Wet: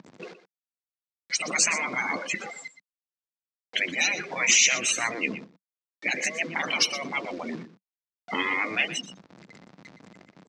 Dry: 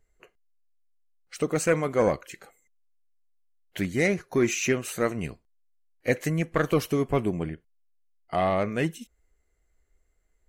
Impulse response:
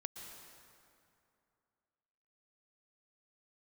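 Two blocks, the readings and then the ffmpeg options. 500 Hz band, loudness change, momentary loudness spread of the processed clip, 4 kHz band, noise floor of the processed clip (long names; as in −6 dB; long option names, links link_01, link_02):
−11.0 dB, +1.5 dB, 19 LU, +13.5 dB, below −85 dBFS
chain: -af "aeval=exprs='val(0)+0.5*0.015*sgn(val(0))':channel_layout=same,afftfilt=real='re*gte(hypot(re,im),0.01)':imag='im*gte(hypot(re,im),0.01)':win_size=1024:overlap=0.75,afftdn=noise_reduction=24:noise_floor=-37,afftfilt=real='re*lt(hypot(re,im),0.112)':imag='im*lt(hypot(re,im),0.112)':win_size=1024:overlap=0.75,acontrast=60,aexciter=amount=3.9:drive=4.1:freq=2100,acrusher=bits=8:dc=4:mix=0:aa=0.000001,highpass=frequency=170:width=0.5412,highpass=frequency=170:width=1.3066,equalizer=frequency=190:width_type=q:width=4:gain=6,equalizer=frequency=270:width_type=q:width=4:gain=3,equalizer=frequency=420:width_type=q:width=4:gain=-4,equalizer=frequency=3000:width_type=q:width=4:gain=-3,lowpass=frequency=5700:width=0.5412,lowpass=frequency=5700:width=1.3066,aecho=1:1:120:0.2"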